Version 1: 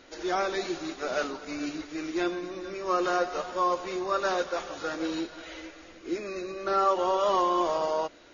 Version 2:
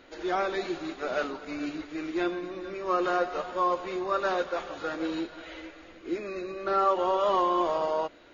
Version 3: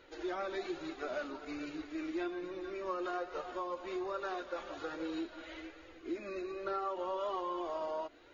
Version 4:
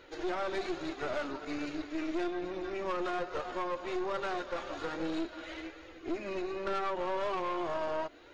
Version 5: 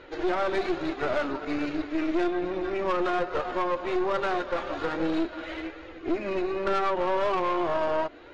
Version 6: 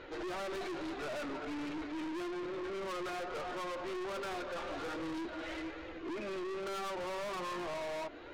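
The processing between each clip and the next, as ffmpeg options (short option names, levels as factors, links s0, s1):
-af "equalizer=f=5800:w=2:g=-11"
-af "acompressor=threshold=0.0282:ratio=3,flanger=delay=2:depth=1.6:regen=-25:speed=1.2:shape=triangular,volume=0.794"
-af "aeval=exprs='(tanh(70.8*val(0)+0.65)-tanh(0.65))/70.8':c=same,volume=2.51"
-af "adynamicsmooth=sensitivity=4:basefreq=3900,volume=2.51"
-af "aeval=exprs='(tanh(70.8*val(0)+0.15)-tanh(0.15))/70.8':c=same,volume=0.891"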